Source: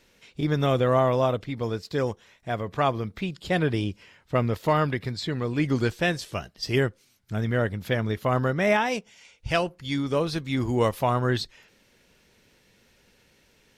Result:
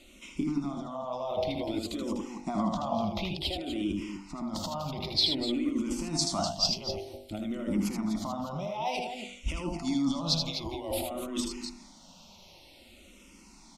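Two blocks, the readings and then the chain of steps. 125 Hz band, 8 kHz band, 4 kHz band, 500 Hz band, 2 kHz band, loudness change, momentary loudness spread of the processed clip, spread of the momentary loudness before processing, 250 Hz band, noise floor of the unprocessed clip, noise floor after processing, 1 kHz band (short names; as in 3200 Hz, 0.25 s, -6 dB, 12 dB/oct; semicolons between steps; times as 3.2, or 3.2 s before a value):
-12.5 dB, +6.5 dB, +4.0 dB, -10.0 dB, -14.5 dB, -5.5 dB, 10 LU, 10 LU, -2.5 dB, -62 dBFS, -55 dBFS, -7.5 dB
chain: Bessel low-pass 8200 Hz, order 2; de-hum 49.13 Hz, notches 18; negative-ratio compressor -33 dBFS, ratio -1; fixed phaser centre 450 Hz, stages 6; on a send: loudspeakers at several distances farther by 27 m -5 dB, 85 m -9 dB; on the sum: endless phaser -0.54 Hz; gain +6.5 dB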